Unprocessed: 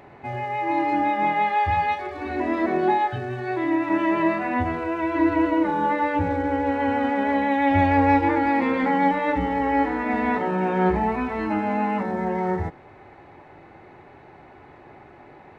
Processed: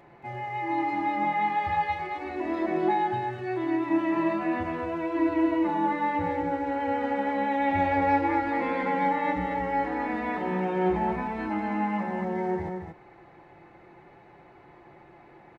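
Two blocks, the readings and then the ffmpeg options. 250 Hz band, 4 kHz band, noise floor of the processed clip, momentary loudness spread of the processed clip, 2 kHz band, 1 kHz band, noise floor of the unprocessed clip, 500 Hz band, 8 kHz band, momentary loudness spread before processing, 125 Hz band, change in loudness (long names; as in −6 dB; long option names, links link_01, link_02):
−5.0 dB, −5.5 dB, −53 dBFS, 7 LU, −5.5 dB, −4.5 dB, −48 dBFS, −4.5 dB, can't be measured, 7 LU, −7.0 dB, −5.0 dB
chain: -filter_complex "[0:a]aecho=1:1:5.8:0.45,asplit=2[link_01][link_02];[link_02]aecho=0:1:226:0.531[link_03];[link_01][link_03]amix=inputs=2:normalize=0,volume=-7dB"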